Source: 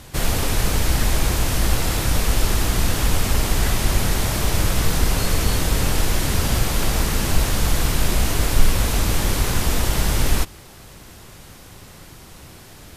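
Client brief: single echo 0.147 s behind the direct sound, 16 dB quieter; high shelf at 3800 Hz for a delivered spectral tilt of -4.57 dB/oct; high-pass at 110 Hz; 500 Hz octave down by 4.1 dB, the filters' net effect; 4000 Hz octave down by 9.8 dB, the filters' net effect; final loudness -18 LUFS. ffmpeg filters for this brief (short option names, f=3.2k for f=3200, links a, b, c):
-af "highpass=110,equalizer=f=500:t=o:g=-5,highshelf=f=3.8k:g=-7.5,equalizer=f=4k:t=o:g=-8,aecho=1:1:147:0.158,volume=9dB"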